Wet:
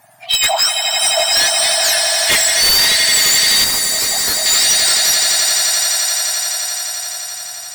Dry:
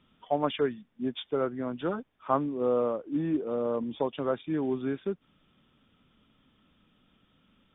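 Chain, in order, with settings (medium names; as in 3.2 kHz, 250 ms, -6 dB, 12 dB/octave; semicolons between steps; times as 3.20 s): spectrum inverted on a logarithmic axis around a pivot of 1.5 kHz; echo with a slow build-up 86 ms, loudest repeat 8, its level -9.5 dB; sine folder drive 10 dB, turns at -16 dBFS; 3.64–4.46 s: peaking EQ 3 kHz -9 dB 1.6 oct; trim +7.5 dB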